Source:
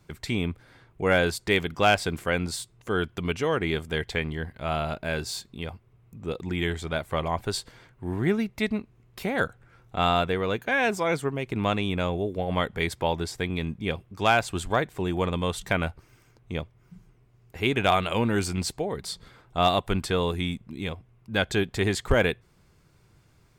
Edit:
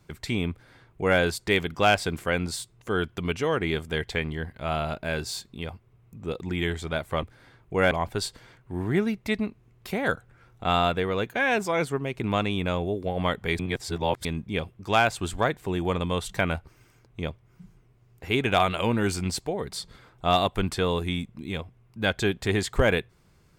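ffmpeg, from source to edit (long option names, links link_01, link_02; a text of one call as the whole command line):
ffmpeg -i in.wav -filter_complex "[0:a]asplit=5[link_01][link_02][link_03][link_04][link_05];[link_01]atrim=end=7.232[link_06];[link_02]atrim=start=0.508:end=1.192[link_07];[link_03]atrim=start=7.228:end=12.912[link_08];[link_04]atrim=start=12.908:end=13.572,asetpts=PTS-STARTPTS,areverse[link_09];[link_05]atrim=start=13.568[link_10];[link_06][link_07]acrossfade=duration=0.004:curve1=hsin:curve2=hsin[link_11];[link_11][link_08]acrossfade=duration=0.004:curve1=hsin:curve2=hsin[link_12];[link_12][link_09]acrossfade=duration=0.004:curve1=hsin:curve2=hsin[link_13];[link_13][link_10]acrossfade=duration=0.004:curve1=hsin:curve2=hsin" out.wav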